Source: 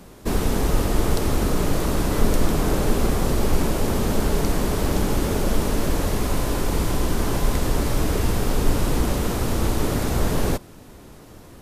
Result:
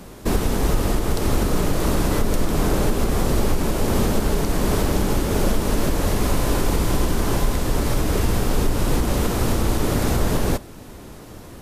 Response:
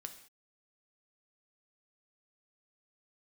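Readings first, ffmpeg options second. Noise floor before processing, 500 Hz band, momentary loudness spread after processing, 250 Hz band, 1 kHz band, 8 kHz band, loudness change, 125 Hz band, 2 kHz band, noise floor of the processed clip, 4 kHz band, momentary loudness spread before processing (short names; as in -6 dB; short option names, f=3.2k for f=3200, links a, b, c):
-45 dBFS, +1.0 dB, 2 LU, +1.5 dB, +1.5 dB, +1.5 dB, +1.5 dB, +1.5 dB, +1.5 dB, -40 dBFS, +1.5 dB, 2 LU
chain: -filter_complex "[0:a]alimiter=limit=-14dB:level=0:latency=1:release=270,asplit=2[a][b];[1:a]atrim=start_sample=2205[c];[b][c]afir=irnorm=-1:irlink=0,volume=-6dB[d];[a][d]amix=inputs=2:normalize=0,volume=2.5dB"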